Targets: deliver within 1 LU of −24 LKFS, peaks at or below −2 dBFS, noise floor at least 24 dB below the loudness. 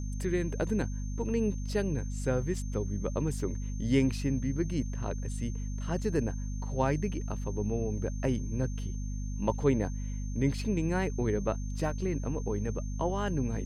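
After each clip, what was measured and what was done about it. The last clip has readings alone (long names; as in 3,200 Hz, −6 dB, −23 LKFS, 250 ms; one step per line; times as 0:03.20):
mains hum 50 Hz; hum harmonics up to 250 Hz; level of the hum −32 dBFS; interfering tone 6,300 Hz; level of the tone −51 dBFS; integrated loudness −32.5 LKFS; sample peak −13.5 dBFS; target loudness −24.0 LKFS
→ hum removal 50 Hz, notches 5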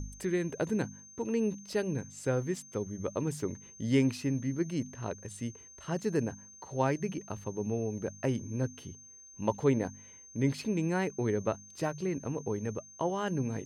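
mains hum none found; interfering tone 6,300 Hz; level of the tone −51 dBFS
→ notch filter 6,300 Hz, Q 30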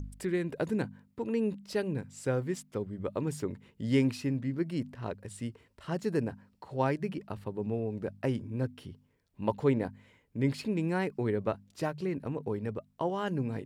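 interfering tone none found; integrated loudness −33.5 LKFS; sample peak −14.5 dBFS; target loudness −24.0 LKFS
→ level +9.5 dB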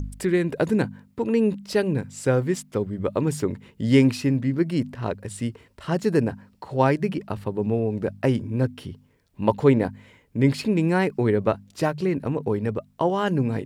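integrated loudness −24.0 LKFS; sample peak −5.0 dBFS; background noise floor −60 dBFS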